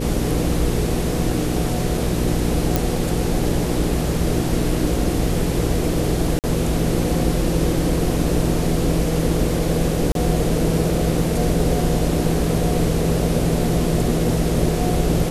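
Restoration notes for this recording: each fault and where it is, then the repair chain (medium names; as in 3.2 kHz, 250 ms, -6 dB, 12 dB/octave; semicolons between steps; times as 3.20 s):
hum 60 Hz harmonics 8 -24 dBFS
2.76 s: pop
6.39–6.44 s: dropout 48 ms
10.12–10.15 s: dropout 32 ms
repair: de-click; de-hum 60 Hz, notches 8; interpolate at 6.39 s, 48 ms; interpolate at 10.12 s, 32 ms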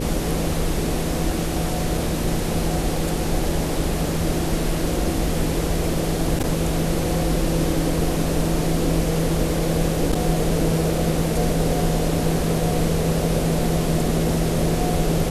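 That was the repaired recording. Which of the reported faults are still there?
nothing left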